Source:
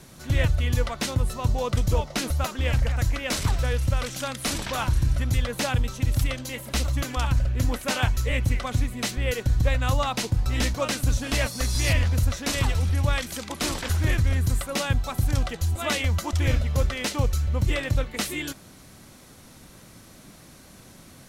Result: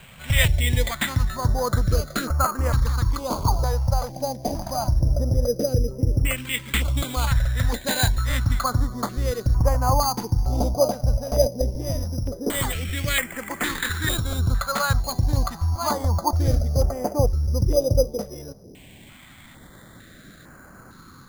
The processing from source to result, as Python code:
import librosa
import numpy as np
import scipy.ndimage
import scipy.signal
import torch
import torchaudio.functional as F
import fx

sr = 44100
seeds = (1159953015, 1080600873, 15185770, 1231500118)

y = fx.filter_lfo_lowpass(x, sr, shape='saw_down', hz=0.16, low_hz=430.0, high_hz=2600.0, q=4.1)
y = np.repeat(y[::8], 8)[:len(y)]
y = fx.peak_eq(y, sr, hz=63.0, db=-10.5, octaves=1.7, at=(11.7, 14.39))
y = fx.filter_held_notch(y, sr, hz=2.2, low_hz=320.0, high_hz=3700.0)
y = y * 10.0 ** (2.0 / 20.0)